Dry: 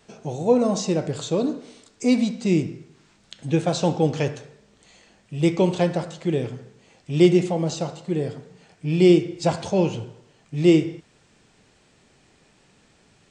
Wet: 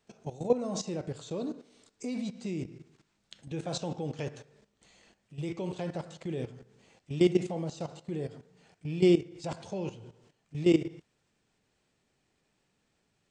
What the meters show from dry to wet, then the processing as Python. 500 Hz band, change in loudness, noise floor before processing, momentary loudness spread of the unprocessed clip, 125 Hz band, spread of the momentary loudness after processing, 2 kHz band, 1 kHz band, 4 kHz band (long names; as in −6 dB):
−10.0 dB, −10.5 dB, −59 dBFS, 17 LU, −11.5 dB, 16 LU, −11.0 dB, −13.0 dB, −10.0 dB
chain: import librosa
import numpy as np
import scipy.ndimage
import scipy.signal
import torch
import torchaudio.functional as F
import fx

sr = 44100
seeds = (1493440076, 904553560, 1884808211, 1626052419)

y = fx.level_steps(x, sr, step_db=14)
y = F.gain(torch.from_numpy(y), -5.5).numpy()